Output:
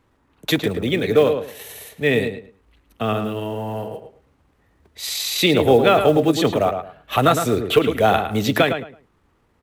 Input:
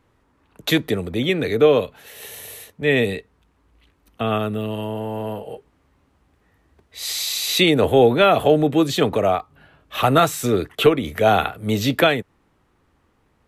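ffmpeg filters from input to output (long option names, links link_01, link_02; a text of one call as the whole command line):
ffmpeg -i in.wav -filter_complex "[0:a]atempo=1.4,acrusher=bits=8:mode=log:mix=0:aa=0.000001,asplit=2[link_01][link_02];[link_02]adelay=109,lowpass=frequency=2700:poles=1,volume=-7dB,asplit=2[link_03][link_04];[link_04]adelay=109,lowpass=frequency=2700:poles=1,volume=0.23,asplit=2[link_05][link_06];[link_06]adelay=109,lowpass=frequency=2700:poles=1,volume=0.23[link_07];[link_01][link_03][link_05][link_07]amix=inputs=4:normalize=0" out.wav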